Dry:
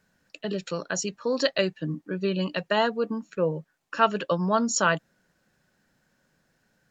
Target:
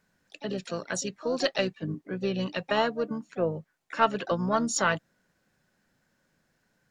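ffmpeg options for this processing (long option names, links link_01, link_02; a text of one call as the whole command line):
ffmpeg -i in.wav -filter_complex "[0:a]asplit=3[link_01][link_02][link_03];[link_02]asetrate=29433,aresample=44100,atempo=1.49831,volume=-16dB[link_04];[link_03]asetrate=58866,aresample=44100,atempo=0.749154,volume=-13dB[link_05];[link_01][link_04][link_05]amix=inputs=3:normalize=0,aeval=exprs='0.596*(cos(1*acos(clip(val(0)/0.596,-1,1)))-cos(1*PI/2))+0.015*(cos(4*acos(clip(val(0)/0.596,-1,1)))-cos(4*PI/2))':channel_layout=same,volume=-3dB" out.wav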